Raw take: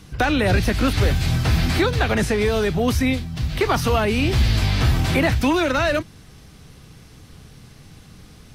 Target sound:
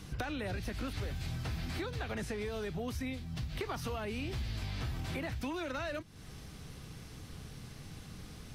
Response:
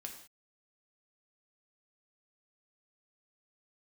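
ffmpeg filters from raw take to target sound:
-af "acompressor=threshold=0.0224:ratio=6,volume=0.668"

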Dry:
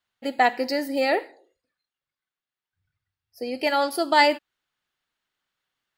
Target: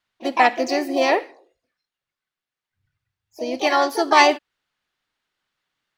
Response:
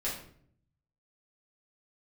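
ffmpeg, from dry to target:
-filter_complex "[0:a]asplit=3[s0][s1][s2];[s1]asetrate=55563,aresample=44100,atempo=0.793701,volume=0.398[s3];[s2]asetrate=58866,aresample=44100,atempo=0.749154,volume=0.355[s4];[s0][s3][s4]amix=inputs=3:normalize=0,highshelf=f=9900:g=-10.5,volume=1.41"

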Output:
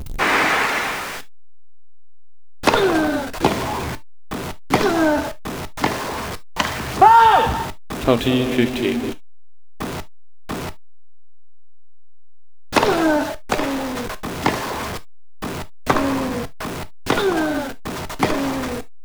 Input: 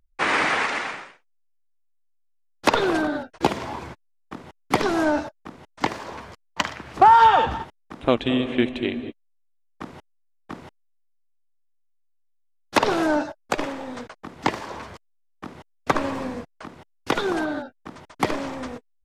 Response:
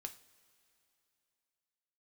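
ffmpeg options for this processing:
-filter_complex "[0:a]aeval=exprs='val(0)+0.5*0.0473*sgn(val(0))':c=same,asplit=2[s0][s1];[1:a]atrim=start_sample=2205,atrim=end_sample=3528,lowshelf=f=180:g=5.5[s2];[s1][s2]afir=irnorm=-1:irlink=0,volume=2.24[s3];[s0][s3]amix=inputs=2:normalize=0,volume=0.562"

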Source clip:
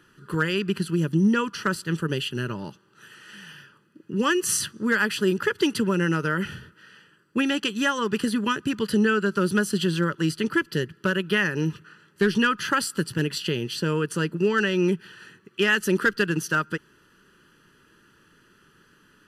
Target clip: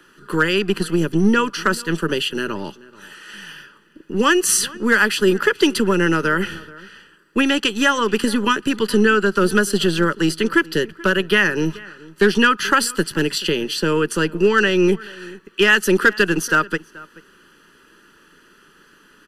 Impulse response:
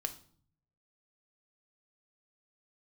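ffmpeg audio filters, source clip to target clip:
-filter_complex "[0:a]equalizer=f=120:w=4.1:g=-14,acrossover=split=230|550|2100[s0][s1][s2][s3];[s0]aeval=exprs='max(val(0),0)':c=same[s4];[s4][s1][s2][s3]amix=inputs=4:normalize=0,asplit=2[s5][s6];[s6]adelay=431.5,volume=0.0891,highshelf=f=4000:g=-9.71[s7];[s5][s7]amix=inputs=2:normalize=0,volume=2.37"

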